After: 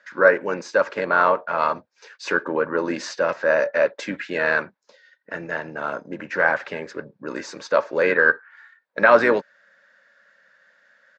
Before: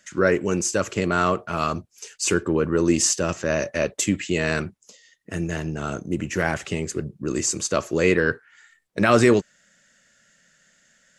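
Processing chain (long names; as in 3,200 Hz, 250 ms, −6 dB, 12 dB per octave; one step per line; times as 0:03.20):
pitch-shifted copies added −4 semitones −11 dB
loudspeaker in its box 330–4,100 Hz, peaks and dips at 360 Hz −6 dB, 550 Hz +9 dB, 930 Hz +9 dB, 1,600 Hz +10 dB, 3,000 Hz −7 dB
level −1 dB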